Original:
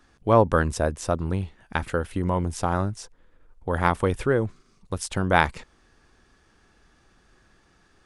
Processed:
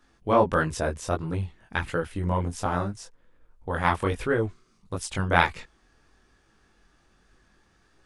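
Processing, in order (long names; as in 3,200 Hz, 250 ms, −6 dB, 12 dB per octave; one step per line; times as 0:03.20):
dynamic equaliser 2,600 Hz, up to +5 dB, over −38 dBFS, Q 0.73
multi-voice chorus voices 2, 1.5 Hz, delay 21 ms, depth 3 ms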